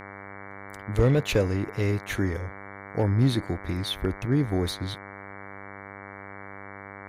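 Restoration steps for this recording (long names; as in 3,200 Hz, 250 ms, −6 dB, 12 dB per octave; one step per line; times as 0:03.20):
clipped peaks rebuilt −14 dBFS
hum removal 99 Hz, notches 23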